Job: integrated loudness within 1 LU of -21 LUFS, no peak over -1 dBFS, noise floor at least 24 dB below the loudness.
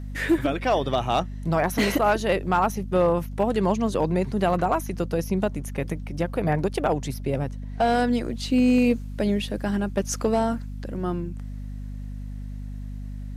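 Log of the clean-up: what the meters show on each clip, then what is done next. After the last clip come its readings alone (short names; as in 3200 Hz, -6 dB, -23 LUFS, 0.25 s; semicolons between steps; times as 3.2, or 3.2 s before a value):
clipped 0.3%; flat tops at -13.0 dBFS; hum 50 Hz; harmonics up to 250 Hz; hum level -31 dBFS; loudness -24.5 LUFS; peak -13.0 dBFS; loudness target -21.0 LUFS
-> clip repair -13 dBFS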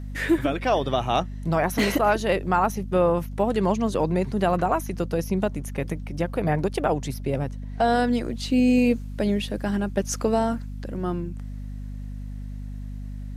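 clipped 0.0%; hum 50 Hz; harmonics up to 250 Hz; hum level -31 dBFS
-> notches 50/100/150/200/250 Hz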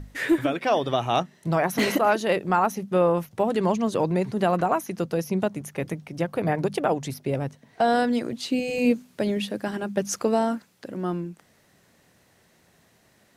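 hum none; loudness -25.0 LUFS; peak -9.5 dBFS; loudness target -21.0 LUFS
-> gain +4 dB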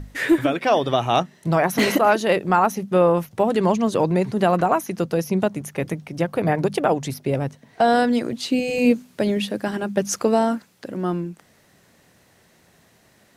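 loudness -21.0 LUFS; peak -5.5 dBFS; noise floor -57 dBFS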